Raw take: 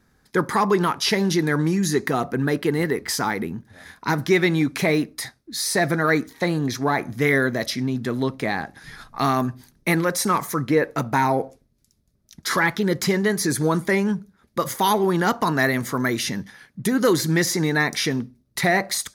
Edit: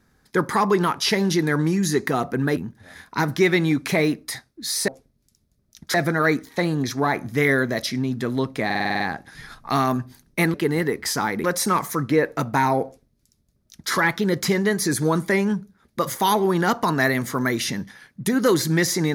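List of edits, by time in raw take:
2.57–3.47 s: move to 10.03 s
8.49 s: stutter 0.05 s, 8 plays
11.44–12.50 s: copy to 5.78 s

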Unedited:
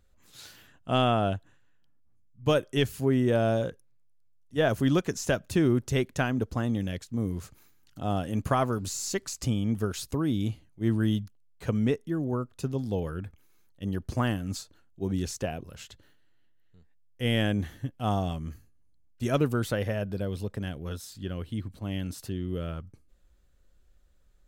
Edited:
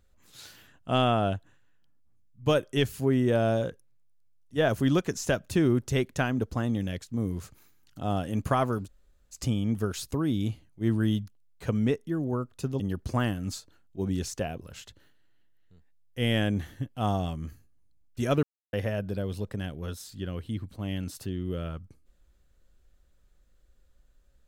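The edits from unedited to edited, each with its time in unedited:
8.85–9.34 s: room tone, crossfade 0.06 s
12.80–13.83 s: delete
19.46–19.76 s: mute

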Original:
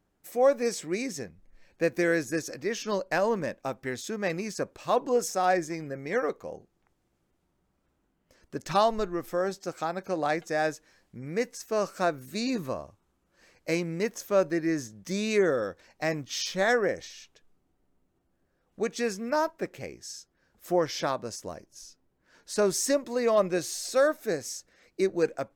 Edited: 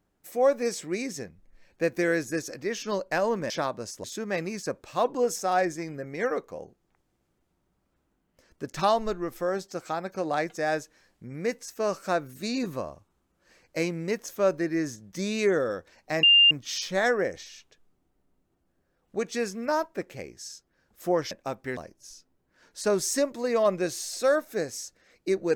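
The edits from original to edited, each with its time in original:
3.50–3.96 s: swap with 20.95–21.49 s
16.15 s: add tone 2.8 kHz -13.5 dBFS 0.28 s

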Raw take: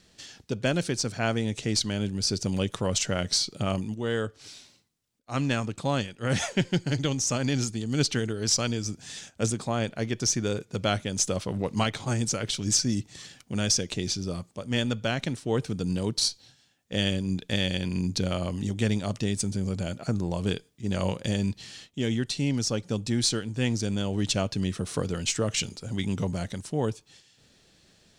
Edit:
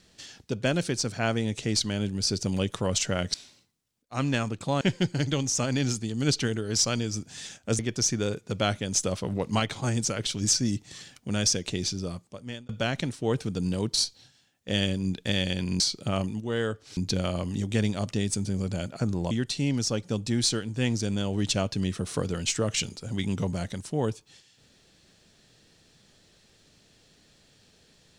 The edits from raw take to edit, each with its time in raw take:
3.34–4.51 s: move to 18.04 s
5.98–6.53 s: delete
9.51–10.03 s: delete
14.01–14.93 s: fade out equal-power
20.38–22.11 s: delete

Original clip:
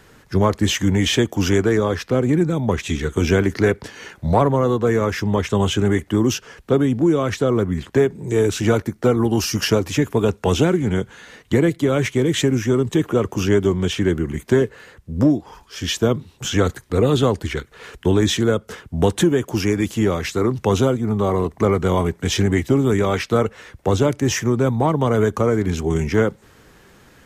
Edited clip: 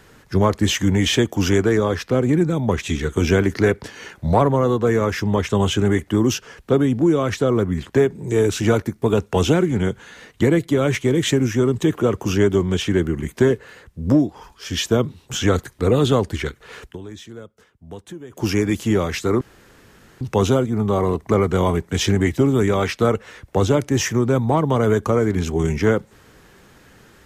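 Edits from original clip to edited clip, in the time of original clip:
9.02–10.13 s: delete
17.95–19.54 s: dip -19.5 dB, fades 0.13 s
20.52 s: insert room tone 0.80 s

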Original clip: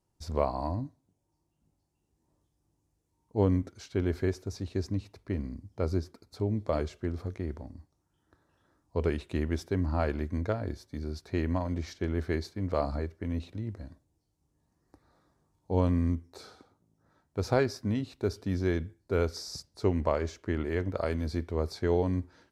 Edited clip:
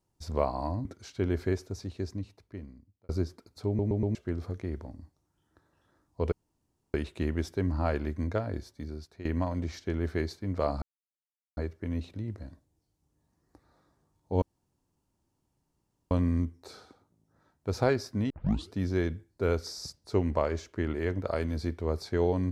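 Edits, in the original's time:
0.85–3.61 s: delete
4.34–5.85 s: fade out
6.43 s: stutter in place 0.12 s, 4 plays
9.08 s: insert room tone 0.62 s
10.84–11.39 s: fade out linear, to -14.5 dB
12.96 s: insert silence 0.75 s
15.81 s: insert room tone 1.69 s
18.00 s: tape start 0.41 s

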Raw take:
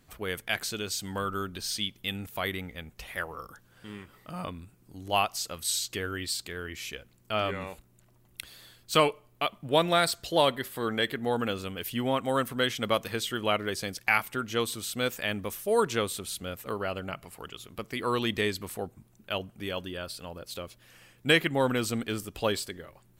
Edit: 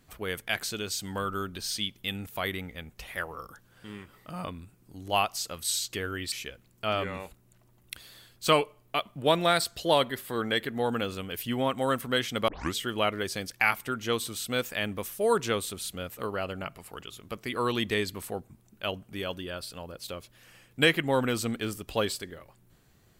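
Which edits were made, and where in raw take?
6.32–6.79 s: delete
12.95 s: tape start 0.27 s

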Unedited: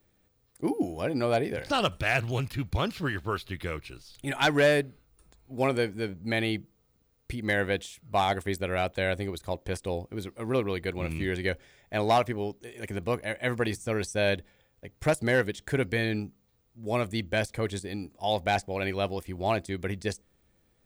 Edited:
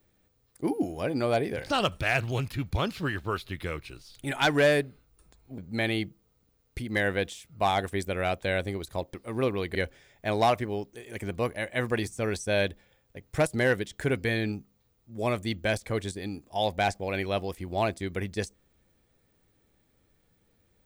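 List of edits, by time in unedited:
5.58–6.11 s: delete
9.67–10.26 s: delete
10.87–11.43 s: delete

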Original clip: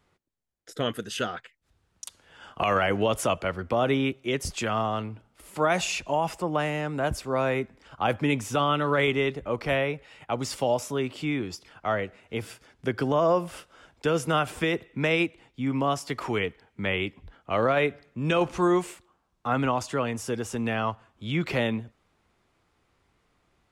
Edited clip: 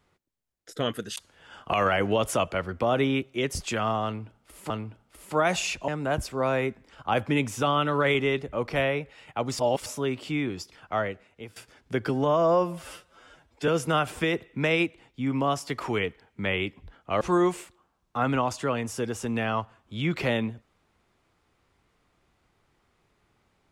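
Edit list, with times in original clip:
1.16–2.06 s: delete
4.95–5.60 s: loop, 2 plays
6.13–6.81 s: delete
10.52–10.79 s: reverse
11.87–12.49 s: fade out, to -16.5 dB
13.02–14.08 s: stretch 1.5×
17.61–18.51 s: delete

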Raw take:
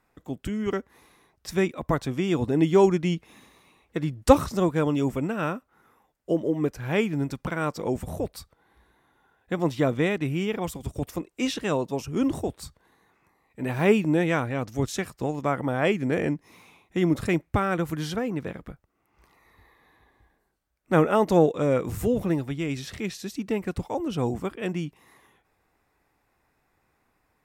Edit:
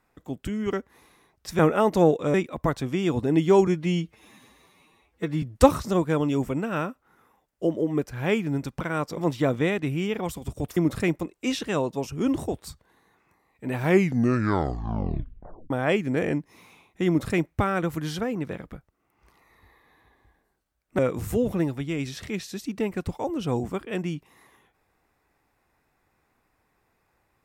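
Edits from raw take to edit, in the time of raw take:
2.92–4.09 s: stretch 1.5×
7.84–9.56 s: delete
13.73 s: tape stop 1.93 s
17.02–17.45 s: copy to 11.15 s
20.94–21.69 s: move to 1.59 s

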